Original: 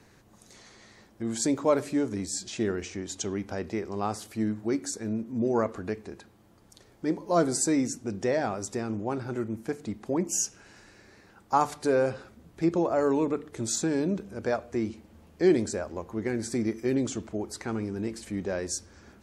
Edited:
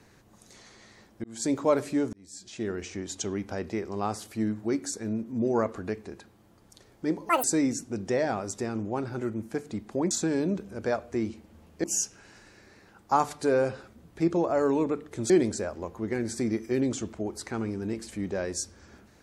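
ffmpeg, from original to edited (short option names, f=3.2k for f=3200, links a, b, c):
-filter_complex "[0:a]asplit=8[a][b][c][d][e][f][g][h];[a]atrim=end=1.24,asetpts=PTS-STARTPTS,afade=t=out:st=1.236:d=0.004:c=hsin[i];[b]atrim=start=1.24:end=2.13,asetpts=PTS-STARTPTS,afade=t=in:d=0.29,afade=t=out:st=0.886:d=0.004:c=hsin[j];[c]atrim=start=2.13:end=7.294,asetpts=PTS-STARTPTS,afade=t=in:d=0.82[k];[d]atrim=start=7.29:end=7.58,asetpts=PTS-STARTPTS,asetrate=86436,aresample=44100[l];[e]atrim=start=7.576:end=10.252[m];[f]atrim=start=13.708:end=15.442[n];[g]atrim=start=10.248:end=13.712[o];[h]atrim=start=15.438[p];[i][j][k]concat=n=3:v=0:a=1[q];[q][l]acrossfade=d=0.004:c1=hsin:c2=hsin[r];[r][m]acrossfade=d=0.004:c1=hsin:c2=hsin[s];[s][n]acrossfade=d=0.004:c1=hsin:c2=hsin[t];[t][o]acrossfade=d=0.004:c1=hsin:c2=hsin[u];[u][p]acrossfade=d=0.004:c1=hsin:c2=hsin"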